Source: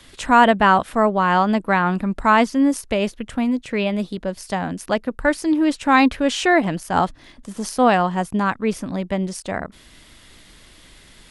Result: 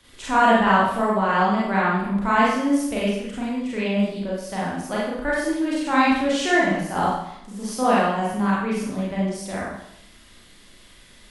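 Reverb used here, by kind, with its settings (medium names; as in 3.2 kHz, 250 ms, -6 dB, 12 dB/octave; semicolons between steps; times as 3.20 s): Schroeder reverb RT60 0.76 s, combs from 31 ms, DRR -7 dB; trim -10 dB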